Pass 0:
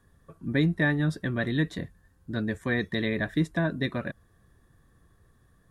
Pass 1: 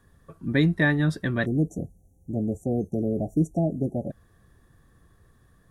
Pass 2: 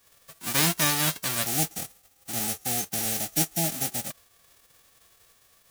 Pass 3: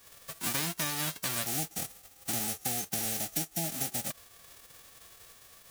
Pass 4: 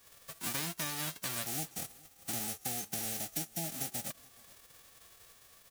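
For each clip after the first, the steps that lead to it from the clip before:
spectral selection erased 1.46–4.12 s, 850–5600 Hz; trim +3 dB
formants flattened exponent 0.1; trim -2.5 dB
compression 10:1, threshold -35 dBFS, peak gain reduction 16.5 dB; trim +5.5 dB
delay 425 ms -24 dB; trim -4.5 dB

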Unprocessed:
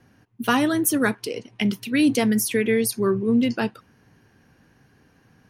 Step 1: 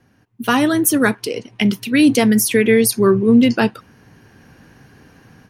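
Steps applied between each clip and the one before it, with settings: level rider gain up to 11 dB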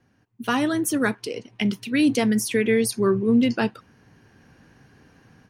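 peaking EQ 13 kHz -12 dB 0.34 oct; trim -7 dB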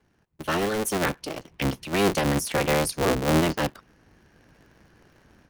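cycle switcher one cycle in 3, inverted; trim -3 dB

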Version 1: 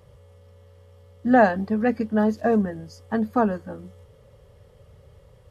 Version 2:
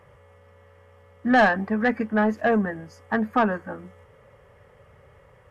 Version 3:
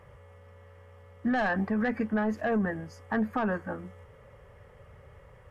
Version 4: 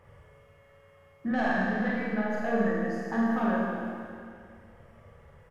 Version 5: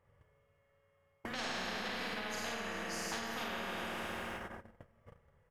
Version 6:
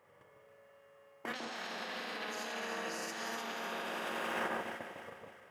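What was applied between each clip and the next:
graphic EQ 500/2000/4000 Hz -5/+6/-12 dB; overdrive pedal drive 17 dB, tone 1.9 kHz, clips at -6.5 dBFS; trim -2 dB
bass shelf 75 Hz +10 dB; peak limiter -19 dBFS, peak gain reduction 11.5 dB; trim -1.5 dB
doubling 48 ms -4 dB; reverb removal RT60 2 s; Schroeder reverb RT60 2.4 s, combs from 27 ms, DRR -4.5 dB; trim -4.5 dB
gate -47 dBFS, range -37 dB; compression 4:1, threshold -35 dBFS, peak gain reduction 12 dB; spectrum-flattening compressor 4:1; trim -1.5 dB
compressor with a negative ratio -44 dBFS, ratio -0.5; high-pass 270 Hz 12 dB/octave; on a send: echo whose repeats swap between lows and highs 152 ms, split 1.2 kHz, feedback 67%, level -3 dB; on the sum: trim +4.5 dB

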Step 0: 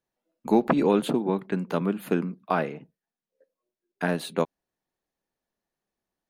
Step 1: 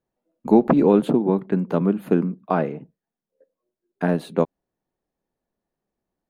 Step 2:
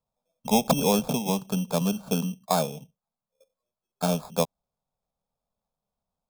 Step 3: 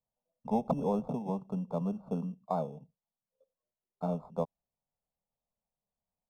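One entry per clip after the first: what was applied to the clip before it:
tilt shelf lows +7 dB, about 1.3 kHz
sample-and-hold 15×; static phaser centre 810 Hz, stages 4
Savitzky-Golay filter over 65 samples; trim -7.5 dB

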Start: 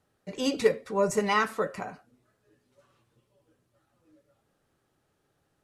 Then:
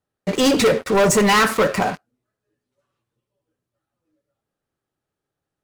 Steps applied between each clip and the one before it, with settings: waveshaping leveller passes 5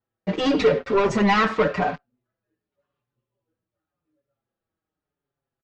Gaussian low-pass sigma 2 samples; endless flanger 5.5 ms -0.9 Hz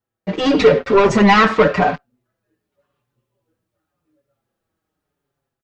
level rider gain up to 7.5 dB; trim +1.5 dB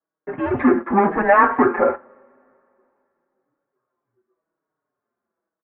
mistuned SSB -190 Hz 470–2000 Hz; two-slope reverb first 0.34 s, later 2.9 s, from -22 dB, DRR 18 dB

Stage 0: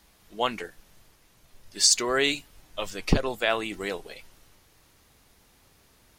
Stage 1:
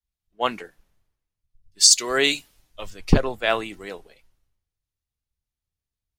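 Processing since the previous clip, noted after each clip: three bands expanded up and down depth 100%; trim -3 dB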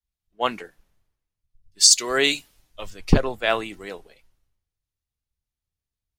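no audible change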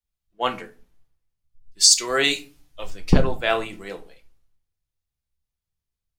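simulated room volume 160 m³, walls furnished, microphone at 0.75 m; trim -1 dB

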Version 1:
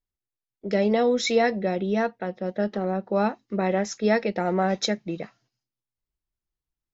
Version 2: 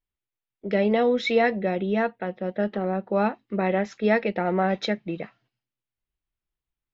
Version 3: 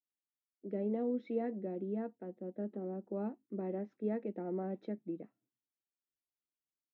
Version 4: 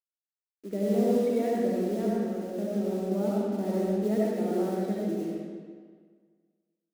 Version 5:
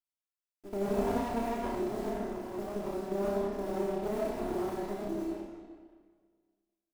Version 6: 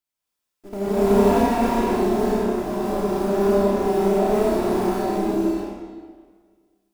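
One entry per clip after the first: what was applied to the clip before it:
resonant high shelf 4.4 kHz -13 dB, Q 1.5
band-pass filter 290 Hz, Q 2.5; trim -6.5 dB
companded quantiser 6-bit; algorithmic reverb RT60 1.7 s, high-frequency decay 0.8×, pre-delay 40 ms, DRR -5.5 dB; trim +4.5 dB
comb filter that takes the minimum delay 3 ms; flutter echo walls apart 5.2 m, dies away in 0.35 s; trim -5 dB
gated-style reverb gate 310 ms rising, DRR -7 dB; trim +5.5 dB

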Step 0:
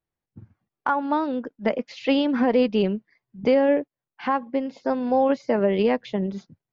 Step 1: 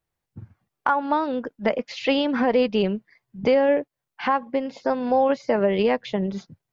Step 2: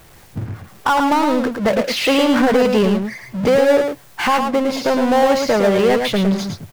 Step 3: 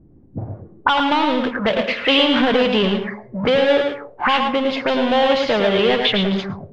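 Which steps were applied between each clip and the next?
peaking EQ 270 Hz -5 dB 1.2 oct; in parallel at 0 dB: compression, threshold -30 dBFS, peak gain reduction 12.5 dB
power-law waveshaper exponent 0.5; delay 110 ms -5.5 dB
on a send at -9 dB: reverberation RT60 0.45 s, pre-delay 82 ms; on the sum: touch-sensitive low-pass 250–3300 Hz up, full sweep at -14 dBFS; trim -3 dB

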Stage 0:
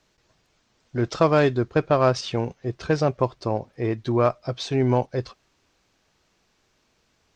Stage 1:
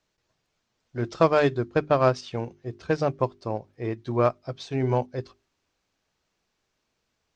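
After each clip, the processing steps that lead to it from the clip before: hum notches 50/100/150/200/250/300/350/400 Hz; upward expansion 1.5:1, over -34 dBFS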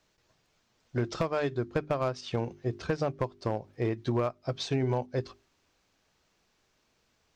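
compression 12:1, threshold -30 dBFS, peak gain reduction 17.5 dB; overload inside the chain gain 25.5 dB; trim +5 dB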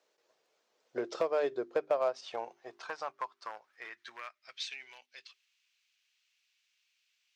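high-pass sweep 470 Hz -> 2.6 kHz, 1.61–4.92 s; trim -5.5 dB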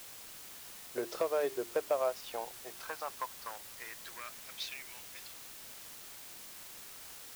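word length cut 8-bit, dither triangular; trim -1.5 dB

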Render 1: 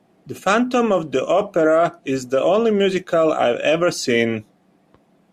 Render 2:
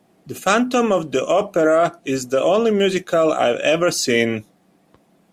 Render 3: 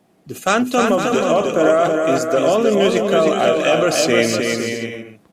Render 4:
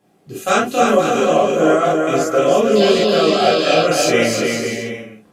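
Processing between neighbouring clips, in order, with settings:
treble shelf 5.3 kHz +8.5 dB
bouncing-ball echo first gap 310 ms, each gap 0.65×, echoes 5
painted sound noise, 2.75–3.82 s, 2.5–5.2 kHz -27 dBFS; gated-style reverb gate 80 ms flat, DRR -6 dB; trim -6 dB

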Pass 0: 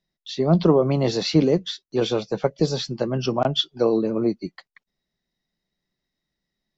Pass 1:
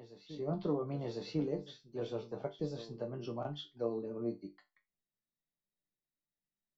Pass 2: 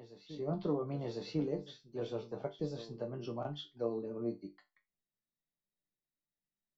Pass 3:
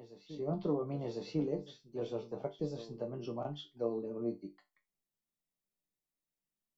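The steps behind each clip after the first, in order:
treble shelf 2.2 kHz -10 dB; chord resonator G2 minor, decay 0.22 s; reverse echo 1049 ms -14 dB; trim -5.5 dB
no audible change
fifteen-band graphic EQ 100 Hz -4 dB, 1.6 kHz -6 dB, 4 kHz -4 dB; trim +1 dB

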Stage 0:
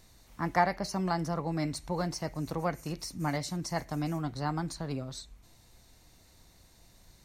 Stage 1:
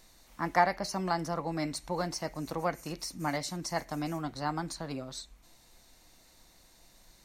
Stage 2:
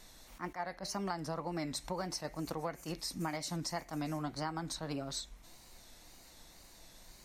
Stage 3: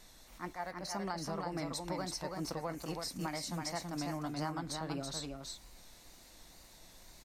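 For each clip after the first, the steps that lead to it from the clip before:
peaking EQ 90 Hz -12 dB 1.8 oct; band-stop 420 Hz, Q 12; trim +1.5 dB
wow and flutter 100 cents; compression 8:1, threshold -37 dBFS, peak gain reduction 17.5 dB; attacks held to a fixed rise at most 320 dB/s; trim +3 dB
delay 329 ms -4 dB; trim -1.5 dB

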